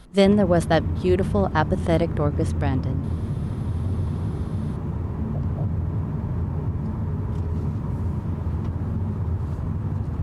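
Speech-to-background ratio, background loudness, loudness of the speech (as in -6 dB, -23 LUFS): 5.0 dB, -27.5 LUFS, -22.5 LUFS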